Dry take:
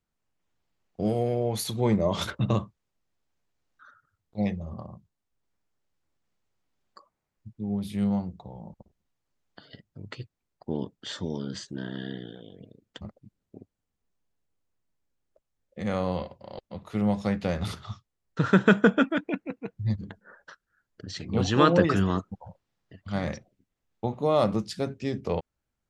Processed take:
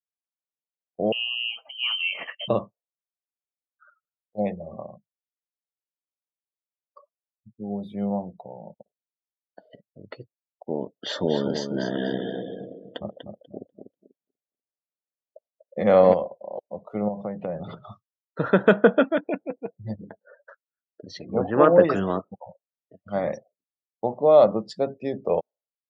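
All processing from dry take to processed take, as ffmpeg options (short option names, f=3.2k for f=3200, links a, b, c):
-filter_complex "[0:a]asettb=1/sr,asplit=3[a][b][c];[a]atrim=end=1.124[d];[b]atrim=start=1.12:end=2.48,asetpts=PTS-STARTPTS,afade=t=in:d=0.004:c=qsin,afade=t=out:st=1.356:d=0.004:c=qsin,highpass=240,lowpass=f=2.8k:t=q:w=0.5098,lowpass=f=2.8k:t=q:w=0.6013,lowpass=f=2.8k:t=q:w=0.9,lowpass=f=2.8k:t=q:w=2.563,afreqshift=-3300[e];[c]atrim=start=2.476[f];[d][e]acrossfade=d=0.004:c1=hsin:c2=qsin[g];[g][f]acrossfade=d=0.004:c1=qsin:c2=hsin,asettb=1/sr,asplit=3[h][i][j];[h]atrim=end=10.964[k];[i]atrim=start=10.96:end=16.14,asetpts=PTS-STARTPTS,afade=t=in:d=0.004:c=qsin,afade=t=out:st=5.176:d=0.004:c=qsin,equalizer=f=8.7k:t=o:w=0.44:g=-10.5,acontrast=87,aecho=1:1:244|488|732|976:0.473|0.17|0.0613|0.0221,atrim=end_sample=228438[l];[j]atrim=start=16.136[m];[k][l]acrossfade=d=0.004:c1=hsin:c2=qsin[n];[n][m]acrossfade=d=0.004:c1=qsin:c2=hsin,asettb=1/sr,asplit=3[o][p][q];[o]atrim=end=17.084[r];[p]atrim=start=17.08:end=17.84,asetpts=PTS-STARTPTS,afade=t=in:d=0.004:c=qsin,afade=t=out:st=0.756:d=0.004:c=qsin,lowpass=3.6k,equalizer=f=150:w=2.3:g=9.5,acompressor=threshold=-28dB:ratio=6:attack=3.2:release=140:knee=1:detection=peak[s];[q]atrim=start=17.836[t];[r][s]acrossfade=d=0.004:c1=hsin:c2=qsin[u];[u][t]acrossfade=d=0.004:c1=qsin:c2=hsin,asettb=1/sr,asplit=3[v][w][x];[v]atrim=end=21.254[y];[w]atrim=start=21.25:end=21.8,asetpts=PTS-STARTPTS,afade=t=in:d=0.004:c=qsin,afade=t=out:st=0.546:d=0.004:c=qsin,lowpass=f=2.1k:w=0.5412,lowpass=f=2.1k:w=1.3066,asoftclip=type=hard:threshold=-8.5dB[z];[x]atrim=start=21.796[aa];[y][z]acrossfade=d=0.004:c1=hsin:c2=qsin[ab];[ab][aa]acrossfade=d=0.004:c1=qsin:c2=hsin,highpass=160,equalizer=f=600:t=o:w=1:g=11.5,afftdn=nr=29:nf=-41,volume=-1.5dB"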